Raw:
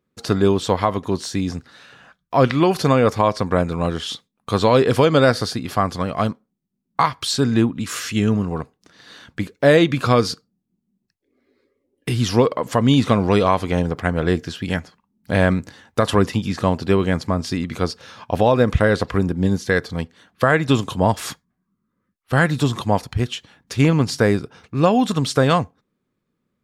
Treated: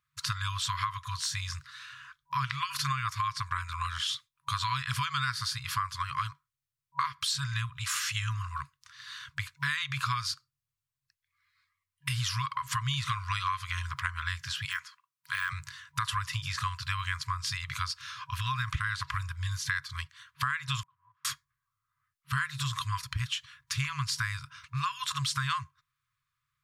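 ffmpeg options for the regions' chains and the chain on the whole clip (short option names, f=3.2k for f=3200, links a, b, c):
-filter_complex "[0:a]asettb=1/sr,asplit=3[a][b][c];[a]atrim=end=14.654[d];[b]atrim=start=14.65:end=15.53,asetpts=PTS-STARTPTS,afade=t=in:d=0.004:c=qsin,afade=t=out:st=0.876:d=0.004:c=qsin,deesser=0.75,highpass=330[e];[c]atrim=start=15.526[f];[d][e]acrossfade=d=0.004:c1=hsin:c2=qsin[g];[g][f]acrossfade=d=0.004:c1=qsin:c2=hsin,asettb=1/sr,asplit=3[h][i][j];[h]atrim=end=20.834[k];[i]atrim=start=20.83:end=21.25,asetpts=PTS-STARTPTS,afade=t=in:d=0.004:c=qsin,afade=t=out:st=0.416:d=0.004:c=qsin,aeval=exprs='val(0)+0.5*0.0631*sgn(val(0))':c=same,asuperpass=centerf=420:order=4:qfactor=4[l];[j]atrim=start=21.246[m];[k][l]acrossfade=d=0.004:c1=hsin:c2=qsin[n];[n][m]acrossfade=d=0.004:c1=qsin:c2=hsin,lowshelf=f=180:g=-9,afftfilt=real='re*(1-between(b*sr/4096,150,970))':imag='im*(1-between(b*sr/4096,150,970))':win_size=4096:overlap=0.75,acompressor=threshold=-29dB:ratio=4"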